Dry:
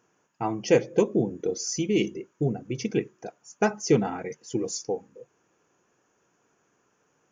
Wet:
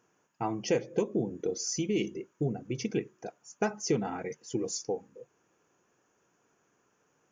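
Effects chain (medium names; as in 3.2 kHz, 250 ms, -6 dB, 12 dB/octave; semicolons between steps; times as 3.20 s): compression 2:1, threshold -25 dBFS, peak gain reduction 6.5 dB; trim -2.5 dB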